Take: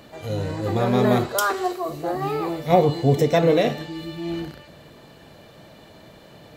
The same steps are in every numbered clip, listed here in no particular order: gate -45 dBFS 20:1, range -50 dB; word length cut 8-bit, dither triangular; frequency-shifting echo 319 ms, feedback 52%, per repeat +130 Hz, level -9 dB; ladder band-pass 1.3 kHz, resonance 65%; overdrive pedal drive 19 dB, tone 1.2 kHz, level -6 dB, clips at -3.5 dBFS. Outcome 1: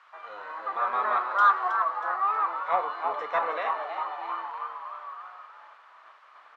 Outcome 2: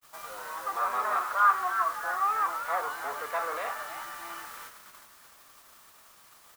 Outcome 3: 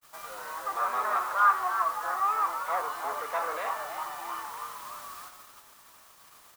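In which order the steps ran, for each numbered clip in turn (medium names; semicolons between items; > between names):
frequency-shifting echo > gate > word length cut > ladder band-pass > overdrive pedal; overdrive pedal > ladder band-pass > frequency-shifting echo > word length cut > gate; overdrive pedal > frequency-shifting echo > ladder band-pass > word length cut > gate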